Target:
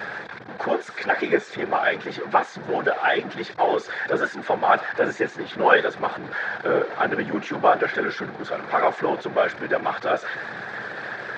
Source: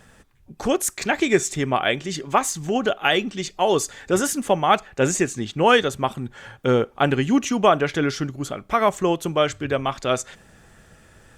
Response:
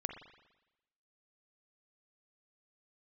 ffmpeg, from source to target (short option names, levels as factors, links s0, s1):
-af "aeval=exprs='val(0)+0.5*0.075*sgn(val(0))':c=same,afftfilt=real='hypot(re,im)*cos(2*PI*random(0))':imag='hypot(re,im)*sin(2*PI*random(1))':win_size=512:overlap=0.75,highpass=f=160:w=0.5412,highpass=f=160:w=1.3066,equalizer=f=170:t=q:w=4:g=-8,equalizer=f=260:t=q:w=4:g=-10,equalizer=f=490:t=q:w=4:g=3,equalizer=f=760:t=q:w=4:g=5,equalizer=f=1600:t=q:w=4:g=10,equalizer=f=2900:t=q:w=4:g=-9,lowpass=f=3700:w=0.5412,lowpass=f=3700:w=1.3066,volume=1.12"